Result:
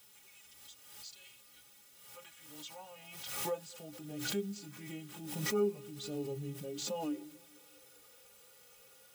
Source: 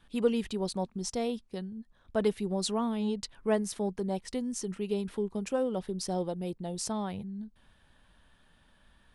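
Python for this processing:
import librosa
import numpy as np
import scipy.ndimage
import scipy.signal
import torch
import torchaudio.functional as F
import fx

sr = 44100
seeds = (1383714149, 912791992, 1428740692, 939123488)

p1 = fx.pitch_heads(x, sr, semitones=-4.0)
p2 = fx.filter_sweep_highpass(p1, sr, from_hz=89.0, to_hz=480.0, start_s=6.0, end_s=7.63, q=7.6)
p3 = fx.hum_notches(p2, sr, base_hz=60, count=3)
p4 = fx.rider(p3, sr, range_db=10, speed_s=0.5)
p5 = p3 + F.gain(torch.from_numpy(p4), 1.0).numpy()
p6 = fx.filter_sweep_highpass(p5, sr, from_hz=4000.0, to_hz=310.0, start_s=1.01, end_s=4.23, q=0.73)
p7 = fx.quant_dither(p6, sr, seeds[0], bits=8, dither='triangular')
p8 = fx.notch_comb(p7, sr, f0_hz=340.0)
p9 = fx.hpss(p8, sr, part='percussive', gain_db=-9)
p10 = fx.stiff_resonator(p9, sr, f0_hz=61.0, decay_s=0.25, stiffness=0.03)
p11 = fx.echo_feedback(p10, sr, ms=217, feedback_pct=57, wet_db=-23.5)
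p12 = fx.pre_swell(p11, sr, db_per_s=45.0)
y = F.gain(torch.from_numpy(p12), -2.5).numpy()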